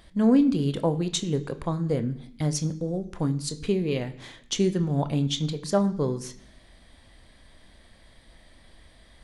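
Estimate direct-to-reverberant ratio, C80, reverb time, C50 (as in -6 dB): 9.0 dB, 18.0 dB, 0.65 s, 15.5 dB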